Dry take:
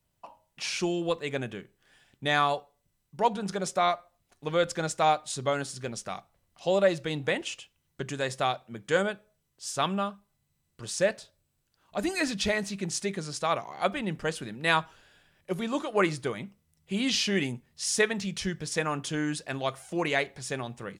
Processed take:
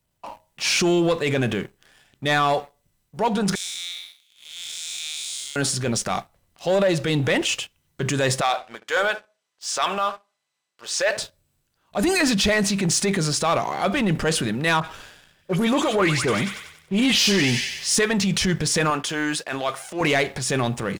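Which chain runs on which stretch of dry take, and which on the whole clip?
0:03.55–0:05.56: spectrum smeared in time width 320 ms + inverse Chebyshev high-pass filter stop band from 1,100 Hz, stop band 50 dB + high-shelf EQ 11,000 Hz +5 dB
0:08.41–0:11.17: band-pass filter 690–6,400 Hz + feedback echo with a low-pass in the loop 72 ms, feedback 26%, low-pass 880 Hz, level −16 dB
0:14.80–0:17.94: all-pass dispersion highs, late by 53 ms, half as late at 2,200 Hz + delay with a high-pass on its return 95 ms, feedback 64%, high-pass 1,900 Hz, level −9 dB
0:18.90–0:20.01: high-pass filter 860 Hz 6 dB per octave + high-shelf EQ 3,000 Hz −7 dB
whole clip: downward compressor, threshold −27 dBFS; transient designer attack −7 dB, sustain +4 dB; leveller curve on the samples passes 2; level +6.5 dB

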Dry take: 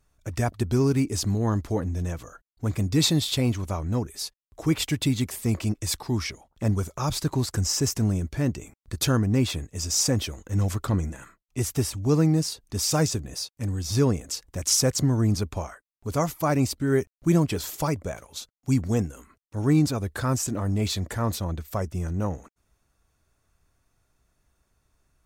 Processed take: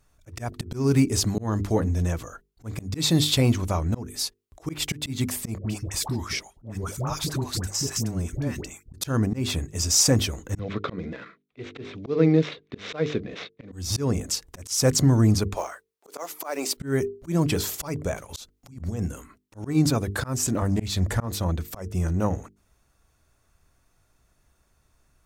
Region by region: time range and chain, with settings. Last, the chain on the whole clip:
0:05.58–0:08.94: all-pass dispersion highs, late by 97 ms, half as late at 760 Hz + downward compressor 4 to 1, threshold −28 dBFS
0:10.59–0:13.72: running median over 9 samples + loudspeaker in its box 180–4,500 Hz, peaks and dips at 200 Hz +3 dB, 460 Hz +8 dB, 860 Hz −8 dB, 2,200 Hz +7 dB, 3,700 Hz +8 dB
0:15.55–0:16.77: high-pass filter 370 Hz 24 dB per octave + noise that follows the level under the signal 27 dB
0:18.29–0:19.03: low-shelf EQ 90 Hz +7.5 dB + compressor whose output falls as the input rises −26 dBFS, ratio −0.5
0:20.62–0:21.26: low-shelf EQ 98 Hz +8 dB + highs frequency-modulated by the lows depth 0.16 ms
whole clip: mains-hum notches 50/100/150/200/250/300/350/400/450 Hz; volume swells 223 ms; level +4.5 dB

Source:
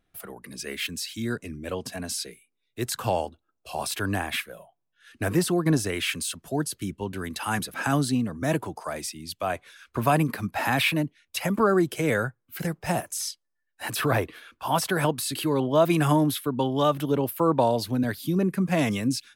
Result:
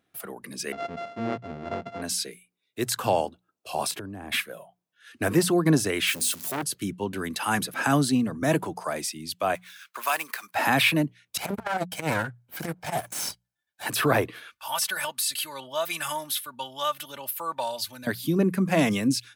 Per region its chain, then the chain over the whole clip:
0:00.72–0:02.02: samples sorted by size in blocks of 64 samples + head-to-tape spacing loss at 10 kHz 35 dB
0:03.91–0:04.32: tilt shelving filter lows +8.5 dB, about 700 Hz + downward compressor 16 to 1, threshold −34 dBFS
0:06.07–0:06.63: spike at every zero crossing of −28.5 dBFS + mains-hum notches 50/100/150/200/250 Hz + saturating transformer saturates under 1,700 Hz
0:09.55–0:10.55: running median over 5 samples + high-pass filter 1,200 Hz + high-shelf EQ 6,000 Hz +10.5 dB
0:11.37–0:13.86: lower of the sound and its delayed copy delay 1.3 ms + saturating transformer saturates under 320 Hz
0:14.50–0:18.07: guitar amp tone stack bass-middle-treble 10-0-10 + comb filter 3.4 ms, depth 71%
whole clip: high-pass filter 130 Hz; mains-hum notches 60/120/180 Hz; level +2.5 dB

